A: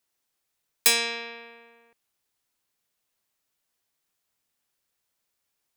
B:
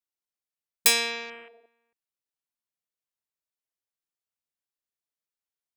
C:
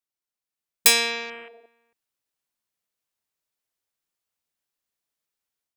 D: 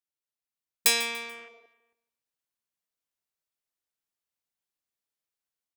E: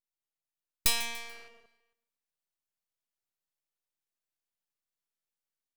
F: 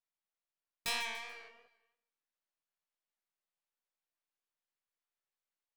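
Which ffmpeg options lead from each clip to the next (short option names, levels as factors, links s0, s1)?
-af "afwtdn=0.00708"
-af "dynaudnorm=f=330:g=3:m=2.24"
-af "aecho=1:1:145|290|435:0.178|0.0622|0.0218,volume=0.501"
-filter_complex "[0:a]acrossover=split=560[s0][s1];[s0]acompressor=threshold=0.00355:ratio=6[s2];[s2][s1]amix=inputs=2:normalize=0,aeval=exprs='max(val(0),0)':c=same"
-filter_complex "[0:a]asplit=2[s0][s1];[s1]highpass=f=720:p=1,volume=5.62,asoftclip=type=tanh:threshold=0.398[s2];[s0][s2]amix=inputs=2:normalize=0,lowpass=f=1900:p=1,volume=0.501,flanger=delay=15:depth=5.5:speed=2.9,volume=0.596"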